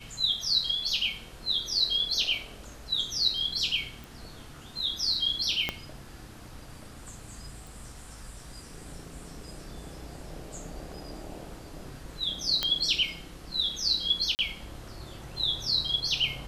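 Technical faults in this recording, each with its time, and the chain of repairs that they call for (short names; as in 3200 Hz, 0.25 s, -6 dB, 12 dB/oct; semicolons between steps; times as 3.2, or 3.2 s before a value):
4.04 pop
5.69 pop -13 dBFS
7.67 pop
12.63 pop -11 dBFS
14.35–14.39 gap 39 ms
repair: de-click; interpolate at 14.35, 39 ms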